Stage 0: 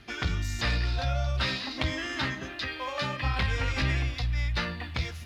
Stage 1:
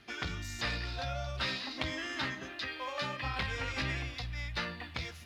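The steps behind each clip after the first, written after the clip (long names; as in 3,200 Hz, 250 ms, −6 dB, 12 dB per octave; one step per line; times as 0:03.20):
low-shelf EQ 120 Hz −10 dB
level −4.5 dB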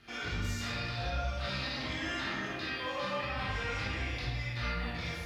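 brickwall limiter −32.5 dBFS, peak gain reduction 11.5 dB
convolution reverb RT60 1.4 s, pre-delay 20 ms, DRR −7.5 dB
level −2.5 dB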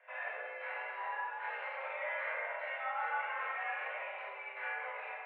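single-sideband voice off tune +280 Hz 260–2,000 Hz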